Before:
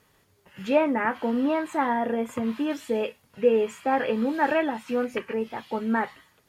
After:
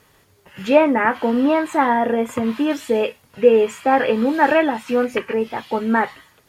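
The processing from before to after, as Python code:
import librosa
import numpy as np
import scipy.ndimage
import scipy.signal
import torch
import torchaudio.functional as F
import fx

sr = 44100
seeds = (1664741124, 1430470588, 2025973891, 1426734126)

y = fx.peak_eq(x, sr, hz=200.0, db=-3.0, octaves=0.52)
y = y * librosa.db_to_amplitude(8.0)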